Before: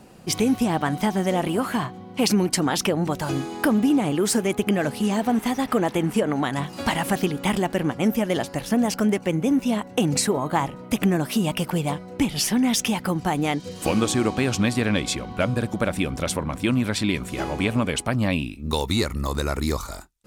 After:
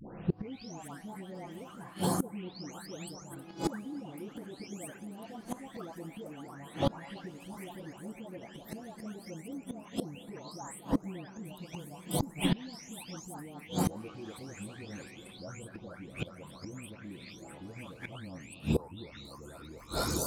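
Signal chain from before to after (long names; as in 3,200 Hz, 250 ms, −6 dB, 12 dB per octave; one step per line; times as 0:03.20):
every frequency bin delayed by itself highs late, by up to 539 ms
bucket-brigade delay 227 ms, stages 2,048, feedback 83%, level −14 dB
gate with flip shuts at −20 dBFS, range −25 dB
level +4 dB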